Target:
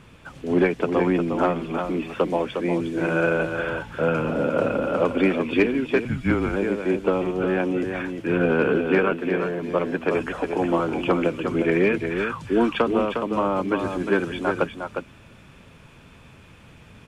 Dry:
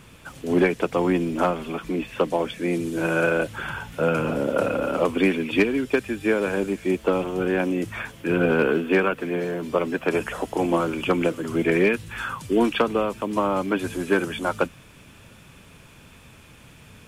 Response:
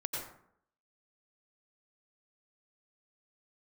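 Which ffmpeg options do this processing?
-filter_complex "[0:a]asettb=1/sr,asplit=3[link_01][link_02][link_03];[link_01]atrim=end=1.754[link_04];[link_02]atrim=start=1.75:end=2.45,asetpts=PTS-STARTPTS,afade=type=in:duration=0.004:curve=qsin,afade=type=out:start_time=0.696:duration=0.004:curve=qsin,highshelf=frequency=8600:gain=9.5[link_05];[link_03]atrim=start=2.446[link_06];[link_04][link_05]acrossfade=duration=0.004:curve1=hsin:curve2=qsin[link_07];[link_07][link_06]acrossfade=duration=0.004:curve1=qsin:curve2=hsin,acrossover=split=9600[link_08][link_09];[link_09]acompressor=threshold=-57dB:ratio=4:attack=1:release=60[link_10];[link_08][link_10]amix=inputs=2:normalize=0,aemphasis=mode=reproduction:type=50kf,aecho=1:1:357:0.473,asettb=1/sr,asplit=3[link_11][link_12][link_13];[link_11]atrim=end=6.054[link_14];[link_12]atrim=start=6.05:end=6.56,asetpts=PTS-STARTPTS,afade=type=in:duration=0.004:curve=qsin,afade=type=out:start_time=0.506:duration=0.004:curve=qsin,afreqshift=-130[link_15];[link_13]atrim=start=6.556[link_16];[link_14][link_15]acrossfade=duration=0.004:curve1=hsin:curve2=qsin[link_17];[link_17][link_16]acrossfade=duration=0.004:curve1=qsin:curve2=hsin"

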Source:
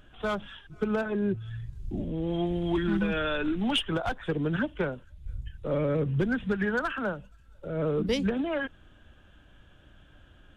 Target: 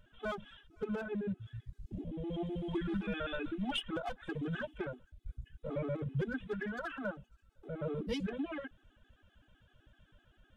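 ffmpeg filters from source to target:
ffmpeg -i in.wav -filter_complex "[0:a]asettb=1/sr,asplit=3[link_01][link_02][link_03];[link_01]atrim=end=4.274[link_04];[link_02]atrim=start=4.27:end=4.78,asetpts=PTS-STARTPTS,afade=type=in:duration=0.004:curve=qsin,afade=type=out:start_time=0.506:duration=0.004:curve=qsin,highshelf=frequency=3500:gain=7[link_05];[link_03]atrim=start=4.776[link_06];[link_04][link_05]acrossfade=duration=0.004:curve1=hsin:curve2=qsin[link_07];[link_07][link_06]acrossfade=duration=0.004:curve1=qsin:curve2=hsin,afftfilt=real='re*gt(sin(2*PI*7.8*pts/sr)*(1-2*mod(floor(b*sr/1024/220),2)),0)':imag='im*gt(sin(2*PI*7.8*pts/sr)*(1-2*mod(floor(b*sr/1024/220),2)),0)':win_size=1024:overlap=0.75,volume=-6dB" out.wav

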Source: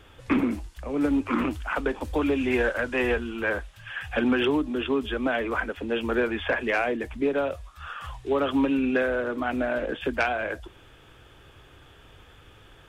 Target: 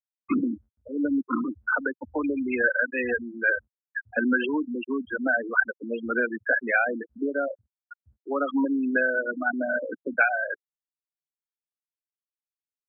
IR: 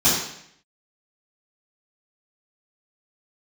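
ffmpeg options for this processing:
-af "afftfilt=real='re*gte(hypot(re,im),0.141)':imag='im*gte(hypot(re,im),0.141)':win_size=1024:overlap=0.75,highpass=frequency=120:width=0.5412,highpass=frequency=120:width=1.3066,equalizer=frequency=150:width_type=q:width=4:gain=-7,equalizer=frequency=400:width_type=q:width=4:gain=-7,equalizer=frequency=1500:width_type=q:width=4:gain=9,lowpass=frequency=3300:width=0.5412,lowpass=frequency=3300:width=1.3066"

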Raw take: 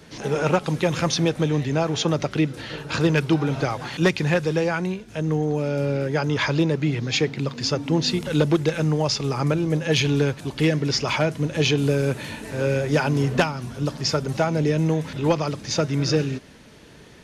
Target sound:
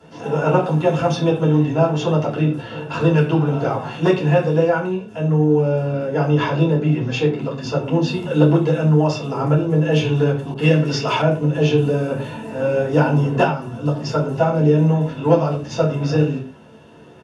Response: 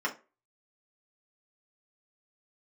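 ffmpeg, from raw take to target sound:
-filter_complex "[0:a]asplit=2[link_01][link_02];[link_02]adelay=27,volume=-11dB[link_03];[link_01][link_03]amix=inputs=2:normalize=0[link_04];[1:a]atrim=start_sample=2205,atrim=end_sample=3087,asetrate=22491,aresample=44100[link_05];[link_04][link_05]afir=irnorm=-1:irlink=0,asettb=1/sr,asplit=3[link_06][link_07][link_08];[link_06]atrim=end=10.544[link_09];[link_07]atrim=start=10.54:end=11.22,asetpts=PTS-STARTPTS,afade=type=in:duration=0.004:curve=qsin,afade=type=out:start_time=0.676:duration=0.004:curve=qsin,adynamicequalizer=threshold=0.0501:dfrequency=1500:dqfactor=0.7:tfrequency=1500:tqfactor=0.7:attack=5:release=100:ratio=0.375:range=3:mode=boostabove:tftype=highshelf[link_10];[link_08]atrim=start=11.216[link_11];[link_09][link_10]acrossfade=duration=0.004:curve1=hsin:curve2=qsin[link_12];[link_12][link_11]acrossfade=duration=0.004:curve1=qsin:curve2=hsin,volume=-9dB"

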